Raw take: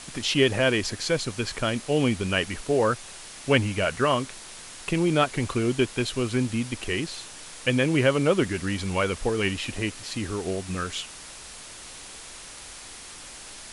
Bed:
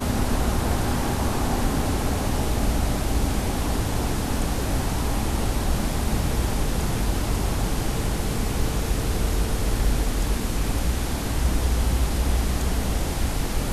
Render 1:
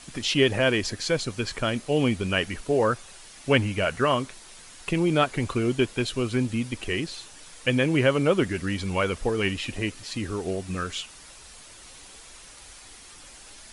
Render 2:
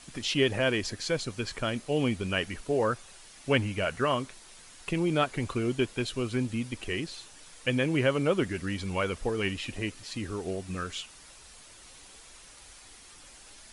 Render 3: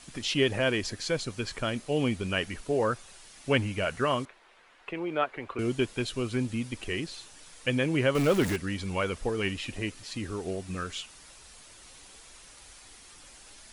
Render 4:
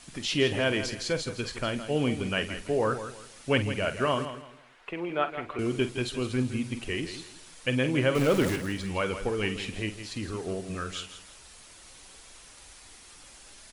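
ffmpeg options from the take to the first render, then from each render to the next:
-af "afftdn=nr=7:nf=-43"
-af "volume=0.596"
-filter_complex "[0:a]asettb=1/sr,asplit=3[s0][s1][s2];[s0]atrim=end=4.254[s3];[s1]atrim=start=4.25:end=5.59,asetpts=PTS-STARTPTS,afade=t=in:d=0.004:c=qsin,afade=t=out:st=1.336:d=0.004:c=qsin,acrossover=split=350 2900:gain=0.158 1 0.0631[s4][s5][s6];[s4][s5][s6]amix=inputs=3:normalize=0[s7];[s2]atrim=start=5.586[s8];[s3][s7]acrossfade=d=0.004:c1=hsin:c2=qsin[s9];[s9][s8]acrossfade=d=0.004:c1=qsin:c2=hsin,asettb=1/sr,asplit=3[s10][s11][s12];[s10]atrim=end=8.154[s13];[s11]atrim=start=8.15:end=8.56,asetpts=PTS-STARTPTS,afade=t=in:d=0.004:c=qsin,afade=t=out:st=0.406:d=0.004:c=qsin,aeval=exprs='val(0)+0.5*0.0398*sgn(val(0))':c=same[s14];[s12]atrim=start=8.556[s15];[s13][s14]acrossfade=d=0.004:c1=hsin:c2=qsin[s16];[s16][s15]acrossfade=d=0.004:c1=qsin:c2=hsin"
-filter_complex "[0:a]asplit=2[s0][s1];[s1]adelay=47,volume=0.251[s2];[s0][s2]amix=inputs=2:normalize=0,aecho=1:1:164|328|492:0.282|0.0817|0.0237"

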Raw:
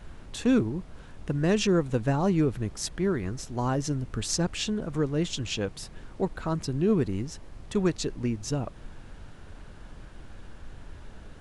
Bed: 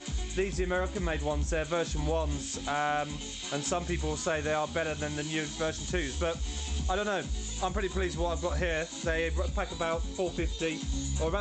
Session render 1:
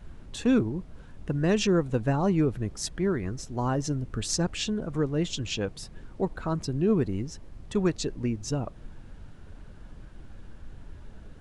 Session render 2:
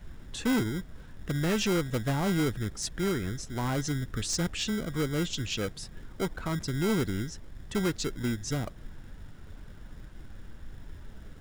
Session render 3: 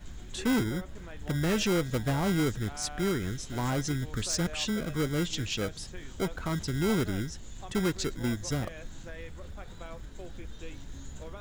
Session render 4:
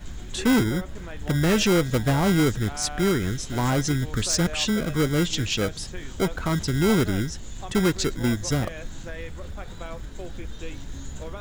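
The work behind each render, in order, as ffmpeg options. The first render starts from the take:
-af "afftdn=nr=6:nf=-47"
-filter_complex "[0:a]acrossover=split=550|2300[s0][s1][s2];[s0]acrusher=samples=25:mix=1:aa=0.000001[s3];[s3][s1][s2]amix=inputs=3:normalize=0,asoftclip=type=tanh:threshold=0.0841"
-filter_complex "[1:a]volume=0.178[s0];[0:a][s0]amix=inputs=2:normalize=0"
-af "volume=2.24"

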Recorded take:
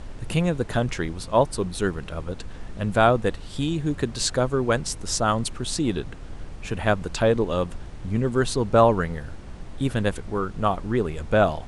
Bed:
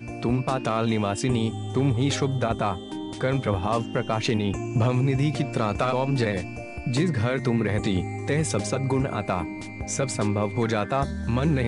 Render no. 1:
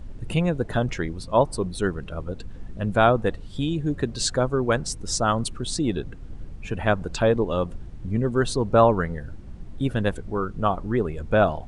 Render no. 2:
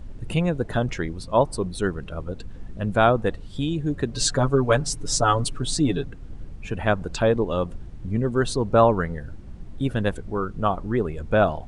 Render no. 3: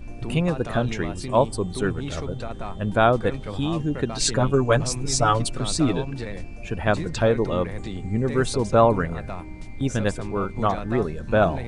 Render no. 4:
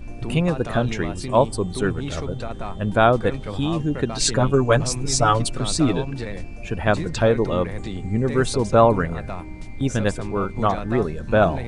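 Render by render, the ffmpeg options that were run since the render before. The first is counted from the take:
-af "afftdn=nr=11:nf=-38"
-filter_complex "[0:a]asettb=1/sr,asplit=3[s0][s1][s2];[s0]atrim=end=4.134[s3];[s1]atrim=start=4.13:end=6.05,asetpts=PTS-STARTPTS,afade=t=in:d=0.004:c=qsin,afade=t=out:st=1.916:d=0.004:c=qsin,aecho=1:1:7:0.89,atrim=end_sample=84672[s4];[s2]atrim=start=6.046[s5];[s3][s4]acrossfade=d=0.004:c1=hsin:c2=qsin[s6];[s6][s5]acrossfade=d=0.004:c1=qsin:c2=hsin"
-filter_complex "[1:a]volume=0.355[s0];[0:a][s0]amix=inputs=2:normalize=0"
-af "volume=1.26"

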